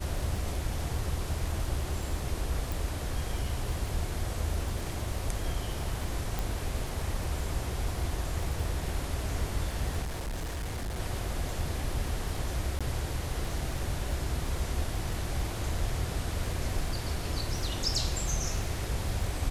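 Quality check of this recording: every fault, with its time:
crackle 24 per s -36 dBFS
2.72 s: pop
6.39 s: pop
10.02–11.00 s: clipped -31 dBFS
12.79–12.81 s: dropout 16 ms

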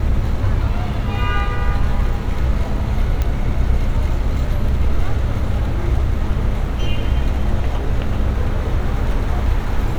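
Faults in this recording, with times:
3.22 s: pop -8 dBFS

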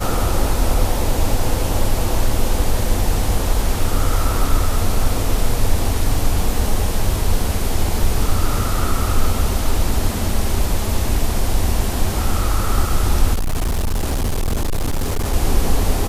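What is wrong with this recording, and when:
13.33–15.34 s: clipped -15.5 dBFS

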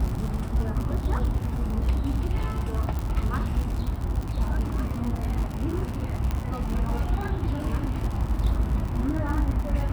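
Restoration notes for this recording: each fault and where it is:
crackle 88 per s -29 dBFS
2.99 s: pop
6.31 s: pop -16 dBFS

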